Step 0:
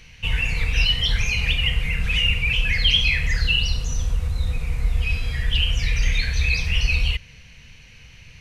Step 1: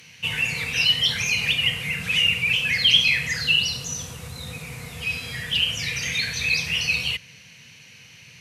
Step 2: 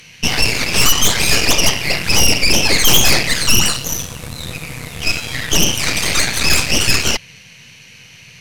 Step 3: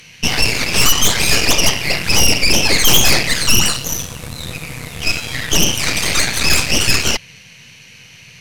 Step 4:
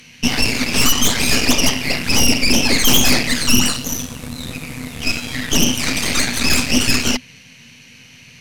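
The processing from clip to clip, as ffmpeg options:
ffmpeg -i in.wav -af "highpass=frequency=120:width=0.5412,highpass=frequency=120:width=1.3066,aemphasis=mode=production:type=cd" out.wav
ffmpeg -i in.wav -af "aeval=exprs='0.562*(cos(1*acos(clip(val(0)/0.562,-1,1)))-cos(1*PI/2))+0.251*(cos(8*acos(clip(val(0)/0.562,-1,1)))-cos(8*PI/2))':channel_layout=same,asoftclip=type=tanh:threshold=-8.5dB,volume=6dB" out.wav
ffmpeg -i in.wav -af anull out.wav
ffmpeg -i in.wav -af "equalizer=frequency=250:width=5.4:gain=15,volume=-2.5dB" out.wav

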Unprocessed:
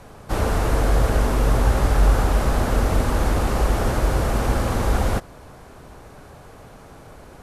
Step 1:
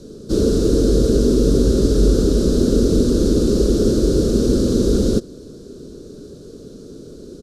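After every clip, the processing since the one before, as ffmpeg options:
ffmpeg -i in.wav -af "firequalizer=gain_entry='entry(110,0);entry(200,11);entry(410,14);entry(800,-23);entry(1400,-9);entry(2000,-21);entry(3900,7);entry(5500,8);entry(12000,-5)':delay=0.05:min_phase=1" out.wav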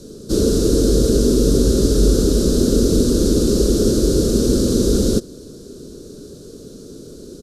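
ffmpeg -i in.wav -af "crystalizer=i=1.5:c=0" out.wav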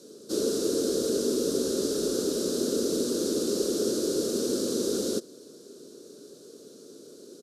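ffmpeg -i in.wav -af "highpass=340,volume=-7.5dB" out.wav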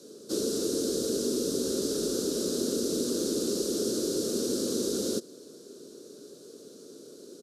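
ffmpeg -i in.wav -filter_complex "[0:a]acrossover=split=300|3000[link_01][link_02][link_03];[link_02]acompressor=threshold=-31dB:ratio=6[link_04];[link_01][link_04][link_03]amix=inputs=3:normalize=0" out.wav

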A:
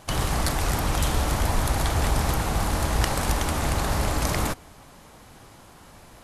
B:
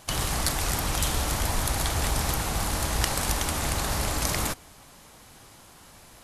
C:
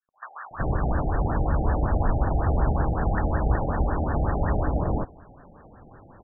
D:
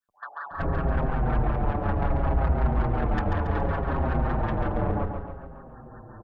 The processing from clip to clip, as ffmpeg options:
ffmpeg -i in.wav -af "highshelf=frequency=2300:gain=8,volume=-4.5dB" out.wav
ffmpeg -i in.wav -filter_complex "[0:a]acrossover=split=1100|4000[link_01][link_02][link_03];[link_02]adelay=140[link_04];[link_01]adelay=510[link_05];[link_05][link_04][link_03]amix=inputs=3:normalize=0,acontrast=47,afftfilt=real='re*lt(b*sr/1024,800*pow(1900/800,0.5+0.5*sin(2*PI*5.4*pts/sr)))':imag='im*lt(b*sr/1024,800*pow(1900/800,0.5+0.5*sin(2*PI*5.4*pts/sr)))':win_size=1024:overlap=0.75" out.wav
ffmpeg -i in.wav -filter_complex "[0:a]asoftclip=type=tanh:threshold=-24.5dB,asplit=2[link_01][link_02];[link_02]aecho=0:1:139|278|417|556|695|834|973:0.501|0.271|0.146|0.0789|0.0426|0.023|0.0124[link_03];[link_01][link_03]amix=inputs=2:normalize=0,asplit=2[link_04][link_05];[link_05]adelay=6.3,afreqshift=-0.64[link_06];[link_04][link_06]amix=inputs=2:normalize=1,volume=5.5dB" out.wav

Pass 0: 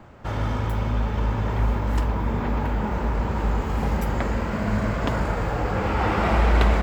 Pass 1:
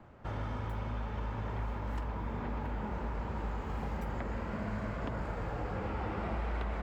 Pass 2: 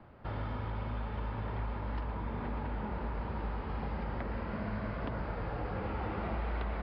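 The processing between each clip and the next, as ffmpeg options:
ffmpeg -i in.wav -filter_complex "[0:a]highshelf=frequency=4300:gain=-9,acrossover=split=600|2600[link_01][link_02][link_03];[link_01]acompressor=threshold=-26dB:ratio=4[link_04];[link_02]acompressor=threshold=-34dB:ratio=4[link_05];[link_03]acompressor=threshold=-50dB:ratio=4[link_06];[link_04][link_05][link_06]amix=inputs=3:normalize=0,volume=-8.5dB" out.wav
ffmpeg -i in.wav -af "aresample=11025,aresample=44100" out.wav

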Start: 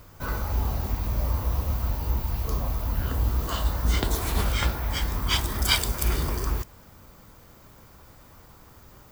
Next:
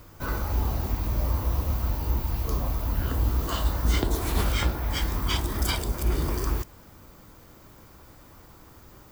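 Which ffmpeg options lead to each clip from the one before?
ffmpeg -i in.wav -filter_complex "[0:a]equalizer=frequency=320:width_type=o:width=0.44:gain=5,acrossover=split=1000[link_01][link_02];[link_02]alimiter=limit=-18.5dB:level=0:latency=1:release=373[link_03];[link_01][link_03]amix=inputs=2:normalize=0" out.wav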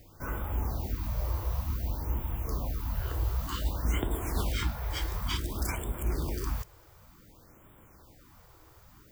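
ffmpeg -i in.wav -af "afftfilt=real='re*(1-between(b*sr/1024,200*pow(5300/200,0.5+0.5*sin(2*PI*0.55*pts/sr))/1.41,200*pow(5300/200,0.5+0.5*sin(2*PI*0.55*pts/sr))*1.41))':imag='im*(1-between(b*sr/1024,200*pow(5300/200,0.5+0.5*sin(2*PI*0.55*pts/sr))/1.41,200*pow(5300/200,0.5+0.5*sin(2*PI*0.55*pts/sr))*1.41))':win_size=1024:overlap=0.75,volume=-5.5dB" out.wav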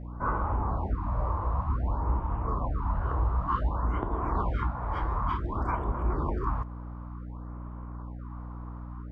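ffmpeg -i in.wav -af "alimiter=limit=-23dB:level=0:latency=1:release=405,lowpass=frequency=1100:width_type=q:width=3.7,aeval=exprs='val(0)+0.00794*(sin(2*PI*60*n/s)+sin(2*PI*2*60*n/s)/2+sin(2*PI*3*60*n/s)/3+sin(2*PI*4*60*n/s)/4+sin(2*PI*5*60*n/s)/5)':channel_layout=same,volume=4dB" out.wav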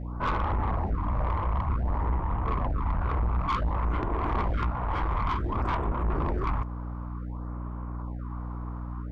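ffmpeg -i in.wav -af "aeval=exprs='(tanh(25.1*val(0)+0.3)-tanh(0.3))/25.1':channel_layout=same,volume=5.5dB" out.wav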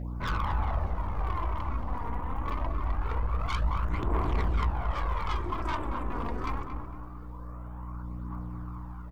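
ffmpeg -i in.wav -filter_complex "[0:a]aphaser=in_gain=1:out_gain=1:delay=4.3:decay=0.52:speed=0.24:type=triangular,asplit=2[link_01][link_02];[link_02]adelay=227,lowpass=frequency=1500:poles=1,volume=-6dB,asplit=2[link_03][link_04];[link_04]adelay=227,lowpass=frequency=1500:poles=1,volume=0.48,asplit=2[link_05][link_06];[link_06]adelay=227,lowpass=frequency=1500:poles=1,volume=0.48,asplit=2[link_07][link_08];[link_08]adelay=227,lowpass=frequency=1500:poles=1,volume=0.48,asplit=2[link_09][link_10];[link_10]adelay=227,lowpass=frequency=1500:poles=1,volume=0.48,asplit=2[link_11][link_12];[link_12]adelay=227,lowpass=frequency=1500:poles=1,volume=0.48[link_13];[link_01][link_03][link_05][link_07][link_09][link_11][link_13]amix=inputs=7:normalize=0,crystalizer=i=3.5:c=0,volume=-6.5dB" out.wav

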